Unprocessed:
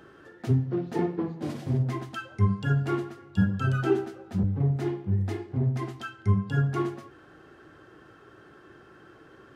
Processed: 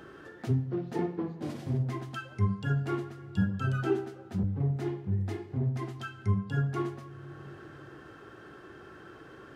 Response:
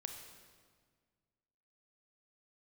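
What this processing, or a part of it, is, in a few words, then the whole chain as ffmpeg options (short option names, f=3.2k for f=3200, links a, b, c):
ducked reverb: -filter_complex "[0:a]asplit=3[a][b][c];[1:a]atrim=start_sample=2205[d];[b][d]afir=irnorm=-1:irlink=0[e];[c]apad=whole_len=421465[f];[e][f]sidechaincompress=threshold=-47dB:ratio=8:attack=16:release=419,volume=7.5dB[g];[a][g]amix=inputs=2:normalize=0,volume=-5dB"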